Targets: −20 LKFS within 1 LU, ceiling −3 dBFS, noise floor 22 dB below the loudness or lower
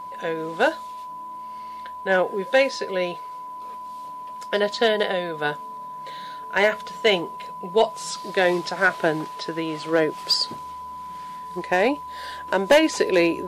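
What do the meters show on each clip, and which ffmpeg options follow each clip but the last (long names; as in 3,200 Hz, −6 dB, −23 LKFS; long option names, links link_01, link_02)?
interfering tone 1,000 Hz; level of the tone −33 dBFS; integrated loudness −23.0 LKFS; sample peak −7.0 dBFS; target loudness −20.0 LKFS
→ -af "bandreject=frequency=1000:width=30"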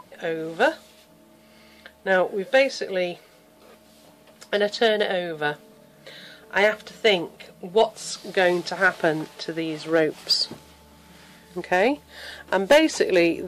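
interfering tone none found; integrated loudness −23.0 LKFS; sample peak −7.0 dBFS; target loudness −20.0 LKFS
→ -af "volume=3dB"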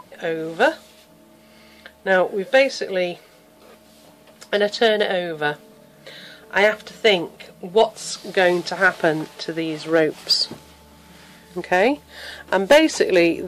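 integrated loudness −20.0 LKFS; sample peak −4.0 dBFS; background noise floor −51 dBFS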